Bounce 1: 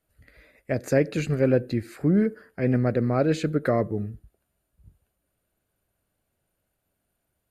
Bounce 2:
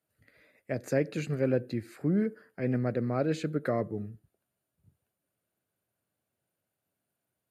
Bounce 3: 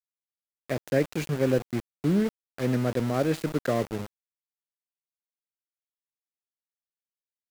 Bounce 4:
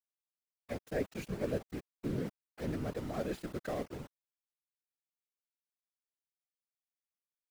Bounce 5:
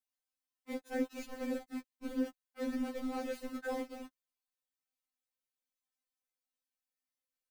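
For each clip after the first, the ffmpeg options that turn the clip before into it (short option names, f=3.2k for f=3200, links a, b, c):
-af "highpass=f=99:w=0.5412,highpass=f=99:w=1.3066,volume=-6.5dB"
-af "aeval=exprs='val(0)*gte(abs(val(0)),0.0178)':c=same,volume=3.5dB"
-af "afftfilt=real='hypot(re,im)*cos(2*PI*random(0))':imag='hypot(re,im)*sin(2*PI*random(1))':win_size=512:overlap=0.75,volume=-5.5dB"
-af "afftfilt=real='re*3.46*eq(mod(b,12),0)':imag='im*3.46*eq(mod(b,12),0)':win_size=2048:overlap=0.75,volume=2.5dB"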